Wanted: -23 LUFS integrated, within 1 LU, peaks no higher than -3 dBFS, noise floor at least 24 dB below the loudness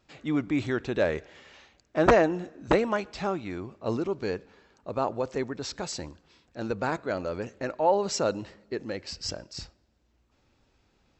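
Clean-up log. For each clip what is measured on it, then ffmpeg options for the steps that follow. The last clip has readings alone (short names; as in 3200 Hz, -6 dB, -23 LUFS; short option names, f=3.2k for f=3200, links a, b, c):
loudness -29.0 LUFS; peak -5.5 dBFS; loudness target -23.0 LUFS
-> -af "volume=6dB,alimiter=limit=-3dB:level=0:latency=1"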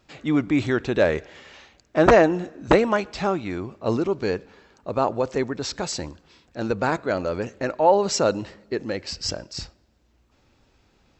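loudness -23.5 LUFS; peak -3.0 dBFS; noise floor -63 dBFS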